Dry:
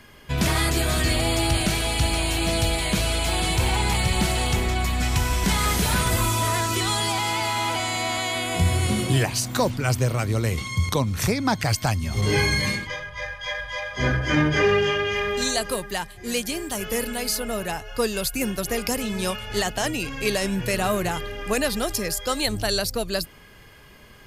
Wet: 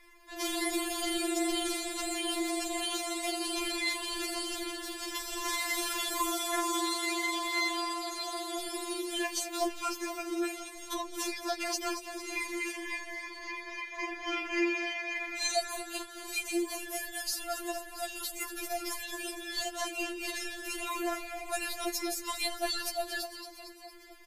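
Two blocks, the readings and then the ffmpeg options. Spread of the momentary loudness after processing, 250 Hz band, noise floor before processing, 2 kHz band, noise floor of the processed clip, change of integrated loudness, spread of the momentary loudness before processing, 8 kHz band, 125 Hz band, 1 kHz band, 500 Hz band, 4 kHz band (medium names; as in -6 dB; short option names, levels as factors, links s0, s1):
8 LU, -9.0 dB, -47 dBFS, -9.0 dB, -47 dBFS, -10.0 dB, 7 LU, -7.5 dB, under -40 dB, -9.0 dB, -11.0 dB, -8.5 dB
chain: -filter_complex "[0:a]tremolo=f=24:d=0.571,asplit=2[s0][s1];[s1]asplit=8[s2][s3][s4][s5][s6][s7][s8][s9];[s2]adelay=228,afreqshift=42,volume=0.299[s10];[s3]adelay=456,afreqshift=84,volume=0.184[s11];[s4]adelay=684,afreqshift=126,volume=0.115[s12];[s5]adelay=912,afreqshift=168,volume=0.0708[s13];[s6]adelay=1140,afreqshift=210,volume=0.0442[s14];[s7]adelay=1368,afreqshift=252,volume=0.0272[s15];[s8]adelay=1596,afreqshift=294,volume=0.017[s16];[s9]adelay=1824,afreqshift=336,volume=0.0105[s17];[s10][s11][s12][s13][s14][s15][s16][s17]amix=inputs=8:normalize=0[s18];[s0][s18]amix=inputs=2:normalize=0,afftfilt=real='re*4*eq(mod(b,16),0)':imag='im*4*eq(mod(b,16),0)':win_size=2048:overlap=0.75,volume=0.668"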